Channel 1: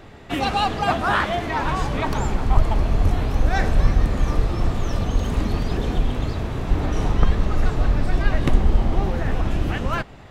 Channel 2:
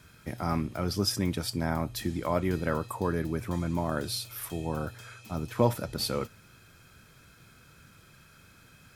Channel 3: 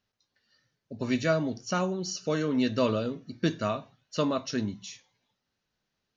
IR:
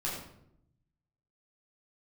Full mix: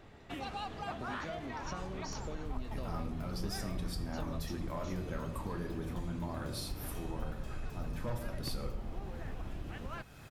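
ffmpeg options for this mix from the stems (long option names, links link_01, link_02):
-filter_complex "[0:a]volume=-12.5dB[link_01];[1:a]asoftclip=type=tanh:threshold=-20.5dB,adelay=2450,volume=-3.5dB,asplit=2[link_02][link_03];[link_03]volume=-5.5dB[link_04];[2:a]acompressor=threshold=-29dB:ratio=6,volume=-4.5dB[link_05];[3:a]atrim=start_sample=2205[link_06];[link_04][link_06]afir=irnorm=-1:irlink=0[link_07];[link_01][link_02][link_05][link_07]amix=inputs=4:normalize=0,acompressor=threshold=-43dB:ratio=2"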